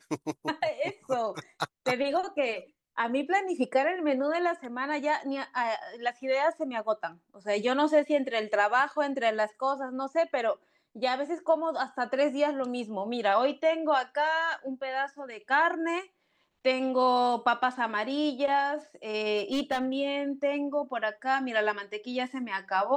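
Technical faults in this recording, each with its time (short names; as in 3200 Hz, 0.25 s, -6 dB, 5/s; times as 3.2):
19.37–19.94 clipped -23.5 dBFS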